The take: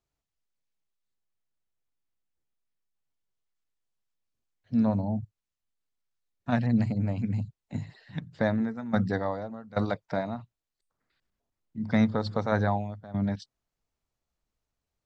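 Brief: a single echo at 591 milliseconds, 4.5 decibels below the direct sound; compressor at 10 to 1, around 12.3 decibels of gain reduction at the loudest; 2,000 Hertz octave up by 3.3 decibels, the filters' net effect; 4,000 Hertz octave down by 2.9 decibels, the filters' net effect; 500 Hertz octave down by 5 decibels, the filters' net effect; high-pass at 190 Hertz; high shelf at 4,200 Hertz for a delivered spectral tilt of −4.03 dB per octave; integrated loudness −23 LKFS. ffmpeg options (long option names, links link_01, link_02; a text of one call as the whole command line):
ffmpeg -i in.wav -af "highpass=190,equalizer=frequency=500:width_type=o:gain=-6.5,equalizer=frequency=2000:width_type=o:gain=5,equalizer=frequency=4000:width_type=o:gain=-7,highshelf=frequency=4200:gain=5.5,acompressor=threshold=-35dB:ratio=10,aecho=1:1:591:0.596,volume=18dB" out.wav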